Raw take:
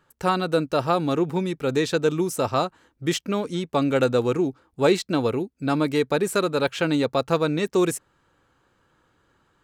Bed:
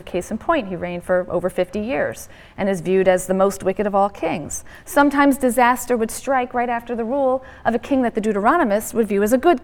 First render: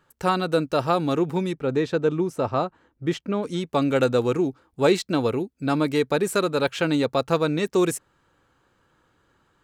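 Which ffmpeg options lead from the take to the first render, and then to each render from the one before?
ffmpeg -i in.wav -filter_complex "[0:a]asplit=3[link_01][link_02][link_03];[link_01]afade=type=out:start_time=1.53:duration=0.02[link_04];[link_02]lowpass=frequency=1500:poles=1,afade=type=in:start_time=1.53:duration=0.02,afade=type=out:start_time=3.42:duration=0.02[link_05];[link_03]afade=type=in:start_time=3.42:duration=0.02[link_06];[link_04][link_05][link_06]amix=inputs=3:normalize=0" out.wav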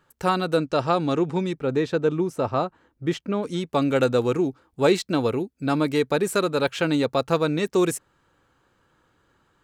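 ffmpeg -i in.wav -filter_complex "[0:a]asettb=1/sr,asplit=3[link_01][link_02][link_03];[link_01]atrim=end=0.574[link_04];[link_02]atrim=start=0.57:end=1.52,asetpts=PTS-STARTPTS,afade=type=in:duration=0.004:curve=qsin,afade=type=out:start_time=0.946:duration=0.004:curve=qsin,lowpass=frequency=8500:width=0.5412,lowpass=frequency=8500:width=1.3066[link_05];[link_03]atrim=start=1.516[link_06];[link_04][link_05]acrossfade=duration=0.004:curve1=hsin:curve2=qsin[link_07];[link_07][link_06]acrossfade=duration=0.004:curve1=qsin:curve2=hsin" out.wav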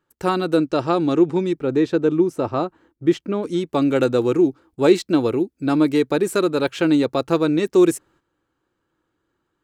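ffmpeg -i in.wav -af "agate=range=-11dB:threshold=-56dB:ratio=16:detection=peak,equalizer=frequency=330:width_type=o:width=0.49:gain=9.5" out.wav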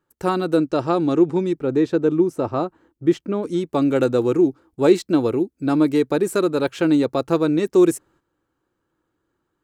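ffmpeg -i in.wav -af "equalizer=frequency=3000:width_type=o:width=1.9:gain=-4" out.wav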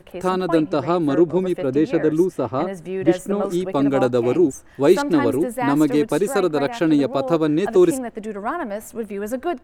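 ffmpeg -i in.wav -i bed.wav -filter_complex "[1:a]volume=-9.5dB[link_01];[0:a][link_01]amix=inputs=2:normalize=0" out.wav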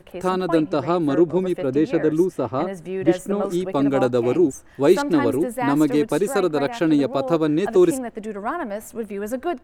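ffmpeg -i in.wav -af "volume=-1dB" out.wav

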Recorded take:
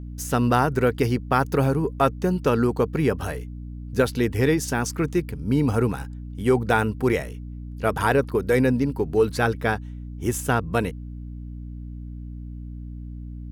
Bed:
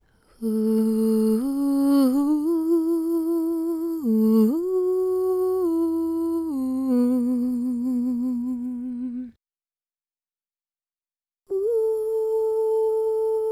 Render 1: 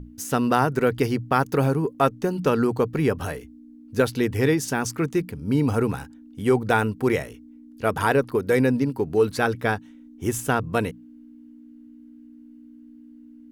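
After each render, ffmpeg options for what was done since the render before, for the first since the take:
ffmpeg -i in.wav -af "bandreject=frequency=60:width_type=h:width=6,bandreject=frequency=120:width_type=h:width=6,bandreject=frequency=180:width_type=h:width=6" out.wav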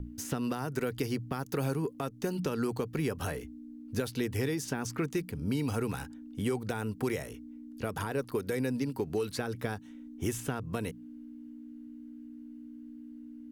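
ffmpeg -i in.wav -filter_complex "[0:a]acrossover=split=2000|4200[link_01][link_02][link_03];[link_01]acompressor=threshold=-30dB:ratio=4[link_04];[link_02]acompressor=threshold=-45dB:ratio=4[link_05];[link_03]acompressor=threshold=-42dB:ratio=4[link_06];[link_04][link_05][link_06]amix=inputs=3:normalize=0,acrossover=split=360[link_07][link_08];[link_08]alimiter=level_in=2.5dB:limit=-24dB:level=0:latency=1:release=105,volume=-2.5dB[link_09];[link_07][link_09]amix=inputs=2:normalize=0" out.wav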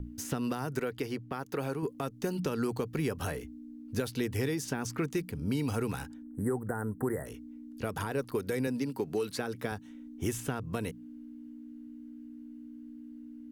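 ffmpeg -i in.wav -filter_complex "[0:a]asettb=1/sr,asplit=3[link_01][link_02][link_03];[link_01]atrim=end=0.804[link_04];[link_02]atrim=start=0.8:end=1.83,asetpts=PTS-STARTPTS,afade=type=in:duration=0.004:curve=qsin,afade=type=out:start_time=1.026:duration=0.004:curve=qsin,bass=frequency=250:gain=-7,treble=frequency=4000:gain=-7[link_05];[link_03]atrim=start=1.826[link_06];[link_04][link_05]acrossfade=duration=0.004:curve1=hsin:curve2=qsin[link_07];[link_07][link_06]acrossfade=duration=0.004:curve1=qsin:curve2=hsin,asplit=3[link_08][link_09][link_10];[link_08]afade=type=out:start_time=6.22:duration=0.02[link_11];[link_09]asuperstop=centerf=3900:order=20:qfactor=0.69,afade=type=in:start_time=6.22:duration=0.02,afade=type=out:start_time=7.25:duration=0.02[link_12];[link_10]afade=type=in:start_time=7.25:duration=0.02[link_13];[link_11][link_12][link_13]amix=inputs=3:normalize=0,asettb=1/sr,asplit=3[link_14][link_15][link_16];[link_14]atrim=end=8.674[link_17];[link_15]atrim=start=8.67:end=9.72,asetpts=PTS-STARTPTS,afade=type=in:duration=0.004:curve=qsin,afade=type=out:start_time=1.046:duration=0.004:curve=qsin,highpass=140[link_18];[link_16]atrim=start=9.716[link_19];[link_17][link_18]acrossfade=duration=0.004:curve1=hsin:curve2=qsin[link_20];[link_20][link_19]acrossfade=duration=0.004:curve1=qsin:curve2=hsin" out.wav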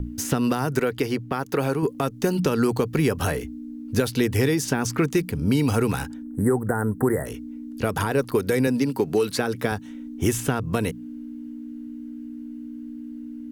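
ffmpeg -i in.wav -af "volume=10.5dB" out.wav

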